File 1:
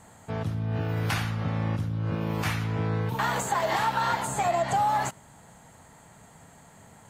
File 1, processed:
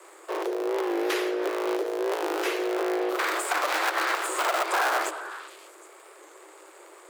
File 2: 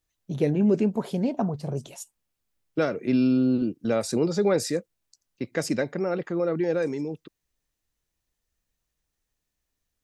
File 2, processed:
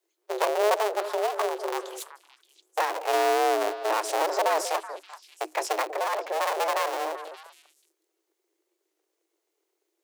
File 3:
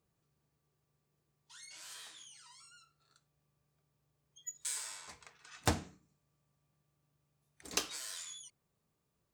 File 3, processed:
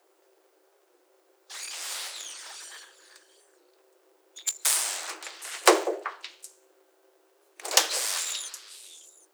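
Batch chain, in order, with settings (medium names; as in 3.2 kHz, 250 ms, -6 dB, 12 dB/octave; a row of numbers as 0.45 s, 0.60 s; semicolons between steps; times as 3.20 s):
cycle switcher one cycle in 2, inverted; in parallel at -1 dB: compression, threshold -30 dBFS; on the sum: frequency shift +310 Hz; repeats whose band climbs or falls 192 ms, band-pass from 500 Hz, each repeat 1.4 oct, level -8 dB; warped record 45 rpm, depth 100 cents; normalise loudness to -27 LUFS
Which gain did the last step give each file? -3.5 dB, -4.5 dB, +9.5 dB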